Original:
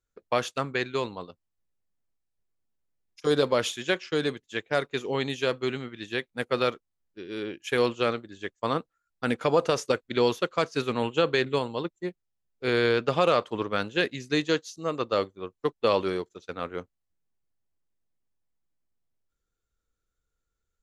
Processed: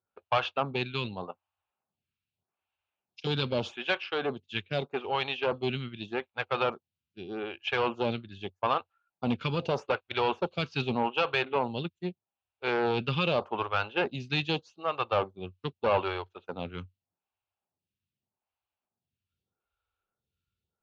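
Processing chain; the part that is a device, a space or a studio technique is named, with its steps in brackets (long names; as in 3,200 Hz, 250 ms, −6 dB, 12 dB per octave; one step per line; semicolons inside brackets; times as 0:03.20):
vibe pedal into a guitar amplifier (phaser with staggered stages 0.82 Hz; tube saturation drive 23 dB, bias 0.3; loudspeaker in its box 86–4,100 Hz, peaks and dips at 92 Hz +8 dB, 300 Hz −8 dB, 470 Hz −6 dB, 820 Hz +6 dB, 1,900 Hz −9 dB, 2,700 Hz +7 dB)
0:01.22–0:03.26: parametric band 880 Hz → 3,100 Hz +7.5 dB 2 octaves
level +5 dB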